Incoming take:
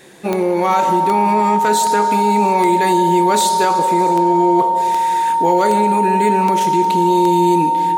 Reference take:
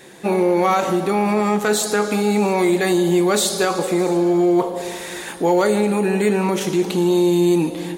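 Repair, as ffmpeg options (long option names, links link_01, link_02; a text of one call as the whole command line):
ffmpeg -i in.wav -af "adeclick=threshold=4,bandreject=frequency=920:width=30" out.wav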